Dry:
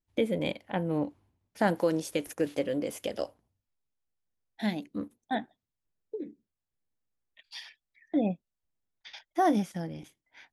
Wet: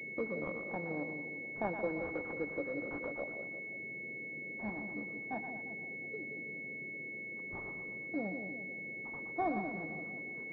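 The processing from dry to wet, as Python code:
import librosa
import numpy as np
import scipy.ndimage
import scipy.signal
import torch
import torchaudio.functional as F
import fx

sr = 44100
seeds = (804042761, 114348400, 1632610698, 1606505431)

y = fx.tilt_eq(x, sr, slope=2.5)
y = fx.dmg_noise_band(y, sr, seeds[0], low_hz=130.0, high_hz=510.0, level_db=-47.0)
y = fx.echo_split(y, sr, split_hz=720.0, low_ms=174, high_ms=118, feedback_pct=52, wet_db=-6.5)
y = fx.pwm(y, sr, carrier_hz=2200.0)
y = F.gain(torch.from_numpy(y), -7.0).numpy()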